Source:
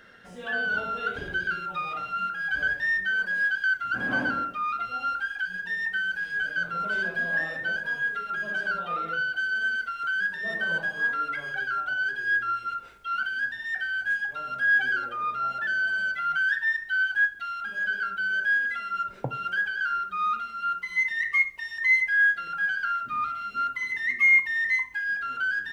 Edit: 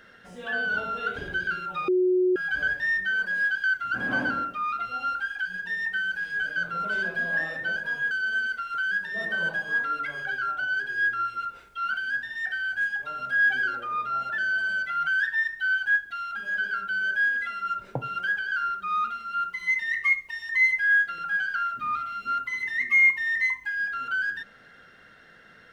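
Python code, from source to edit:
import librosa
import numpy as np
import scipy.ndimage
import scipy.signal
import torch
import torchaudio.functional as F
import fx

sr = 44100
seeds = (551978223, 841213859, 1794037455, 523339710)

y = fx.edit(x, sr, fx.bleep(start_s=1.88, length_s=0.48, hz=366.0, db=-18.5),
    fx.cut(start_s=8.11, length_s=1.29), tone=tone)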